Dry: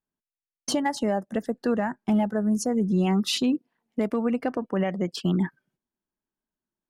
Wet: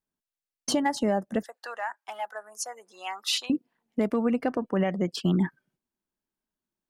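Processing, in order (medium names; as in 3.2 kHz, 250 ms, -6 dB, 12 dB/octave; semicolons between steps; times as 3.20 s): 1.43–3.50 s: high-pass 780 Hz 24 dB/octave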